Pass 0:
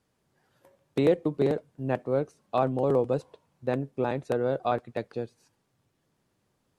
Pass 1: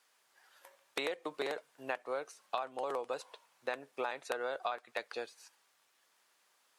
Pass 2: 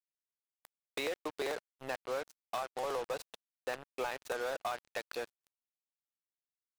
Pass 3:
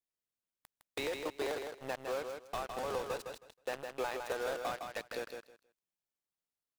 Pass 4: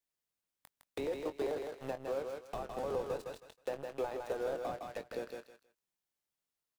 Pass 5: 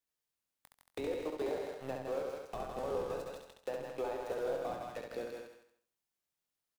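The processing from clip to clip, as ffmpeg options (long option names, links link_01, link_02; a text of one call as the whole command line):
ffmpeg -i in.wav -af "highpass=1100,acompressor=threshold=-41dB:ratio=12,volume=8.5dB" out.wav
ffmpeg -i in.wav -af "acrusher=bits=6:mix=0:aa=0.5,asoftclip=type=tanh:threshold=-30.5dB,volume=2.5dB" out.wav
ffmpeg -i in.wav -filter_complex "[0:a]asplit=2[link_01][link_02];[link_02]acrusher=samples=29:mix=1:aa=0.000001:lfo=1:lforange=29:lforate=0.43,volume=-9.5dB[link_03];[link_01][link_03]amix=inputs=2:normalize=0,aecho=1:1:159|318|477:0.501|0.0902|0.0162,volume=-2dB" out.wav
ffmpeg -i in.wav -filter_complex "[0:a]asplit=2[link_01][link_02];[link_02]adelay=22,volume=-11dB[link_03];[link_01][link_03]amix=inputs=2:normalize=0,acrossover=split=750[link_04][link_05];[link_05]acompressor=threshold=-53dB:ratio=4[link_06];[link_04][link_06]amix=inputs=2:normalize=0,volume=2dB" out.wav
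ffmpeg -i in.wav -af "aecho=1:1:68|136|204|272:0.631|0.208|0.0687|0.0227,volume=-1.5dB" out.wav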